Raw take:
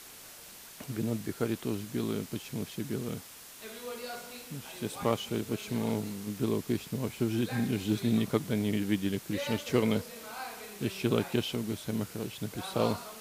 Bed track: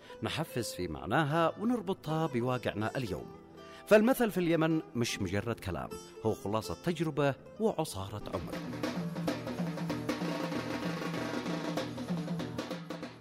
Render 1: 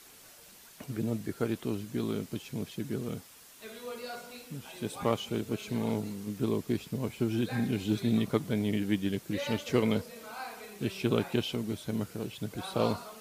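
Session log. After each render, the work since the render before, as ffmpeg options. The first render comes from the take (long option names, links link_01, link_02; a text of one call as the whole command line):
ffmpeg -i in.wav -af "afftdn=noise_reduction=6:noise_floor=-50" out.wav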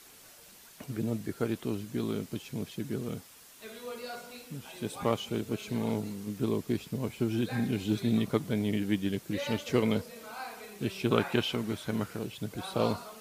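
ffmpeg -i in.wav -filter_complex "[0:a]asettb=1/sr,asplit=3[link_01][link_02][link_03];[link_01]atrim=end=11.114[link_04];[link_02]atrim=start=11.11:end=12.19,asetpts=PTS-STARTPTS,afade=type=in:duration=0.004:curve=qsin,afade=type=out:start_time=1.076:duration=0.004:curve=qsin,equalizer=frequency=1400:width=0.68:gain=8[link_05];[link_03]atrim=start=12.186[link_06];[link_04][link_05]acrossfade=duration=0.004:curve1=hsin:curve2=qsin[link_07];[link_07][link_06]acrossfade=duration=0.004:curve1=qsin:curve2=hsin" out.wav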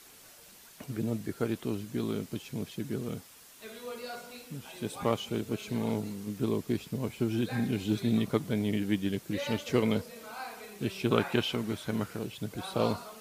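ffmpeg -i in.wav -af anull out.wav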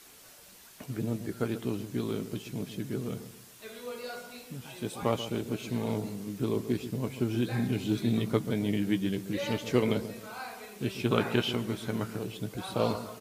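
ffmpeg -i in.wav -filter_complex "[0:a]asplit=2[link_01][link_02];[link_02]adelay=16,volume=-11dB[link_03];[link_01][link_03]amix=inputs=2:normalize=0,asplit=2[link_04][link_05];[link_05]adelay=135,lowpass=frequency=970:poles=1,volume=-11dB,asplit=2[link_06][link_07];[link_07]adelay=135,lowpass=frequency=970:poles=1,volume=0.41,asplit=2[link_08][link_09];[link_09]adelay=135,lowpass=frequency=970:poles=1,volume=0.41,asplit=2[link_10][link_11];[link_11]adelay=135,lowpass=frequency=970:poles=1,volume=0.41[link_12];[link_06][link_08][link_10][link_12]amix=inputs=4:normalize=0[link_13];[link_04][link_13]amix=inputs=2:normalize=0" out.wav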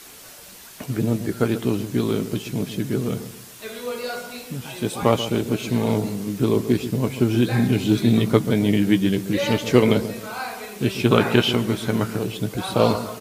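ffmpeg -i in.wav -af "volume=10.5dB,alimiter=limit=-1dB:level=0:latency=1" out.wav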